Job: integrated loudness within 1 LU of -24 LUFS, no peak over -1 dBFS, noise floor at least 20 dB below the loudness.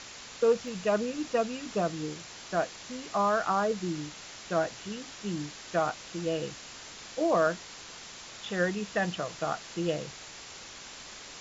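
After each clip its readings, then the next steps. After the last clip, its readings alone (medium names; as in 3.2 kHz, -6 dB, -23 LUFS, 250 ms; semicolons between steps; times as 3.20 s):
dropouts 1; longest dropout 1.8 ms; noise floor -46 dBFS; noise floor target -52 dBFS; loudness -31.5 LUFS; peak level -14.0 dBFS; loudness target -24.0 LUFS
-> interpolate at 0.68 s, 1.8 ms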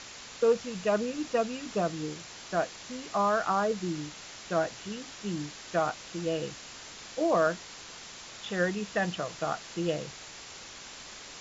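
dropouts 0; noise floor -46 dBFS; noise floor target -51 dBFS
-> noise reduction 6 dB, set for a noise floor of -46 dBFS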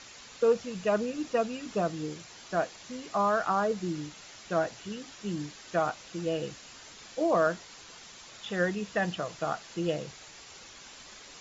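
noise floor -50 dBFS; noise floor target -51 dBFS
-> noise reduction 6 dB, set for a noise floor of -50 dBFS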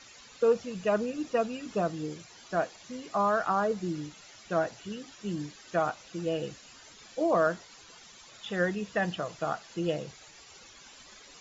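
noise floor -53 dBFS; loudness -31.0 LUFS; peak level -14.5 dBFS; loudness target -24.0 LUFS
-> trim +7 dB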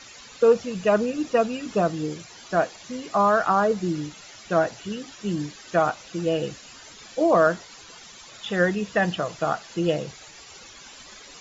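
loudness -24.0 LUFS; peak level -7.5 dBFS; noise floor -46 dBFS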